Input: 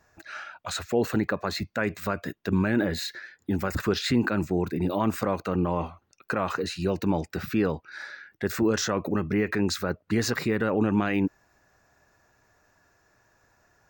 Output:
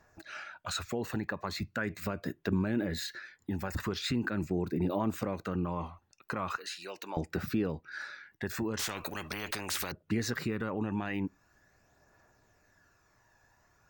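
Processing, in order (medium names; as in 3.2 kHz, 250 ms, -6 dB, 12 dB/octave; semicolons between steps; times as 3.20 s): 6.56–7.17 s: high-pass 970 Hz 12 dB/octave; compression 2:1, threshold -30 dBFS, peak gain reduction 7 dB; phaser 0.41 Hz, delay 1.2 ms, feedback 35%; on a send at -23 dB: reverberation RT60 0.20 s, pre-delay 3 ms; 8.79–9.92 s: on the sum: spectrum-flattening compressor 4:1; trim -3.5 dB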